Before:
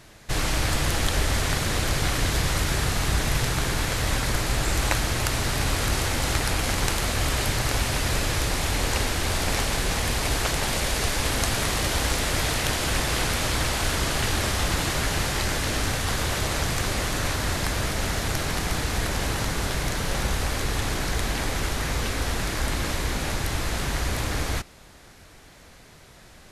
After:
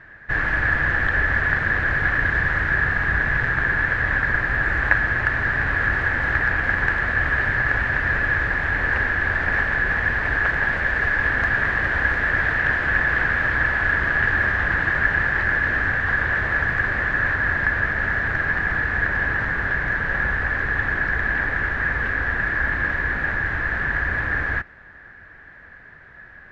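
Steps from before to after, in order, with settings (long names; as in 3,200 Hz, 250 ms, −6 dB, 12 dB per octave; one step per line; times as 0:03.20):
low-pass with resonance 1,700 Hz, resonance Q 14
parametric band 80 Hz +2.5 dB 1.2 octaves
level −3 dB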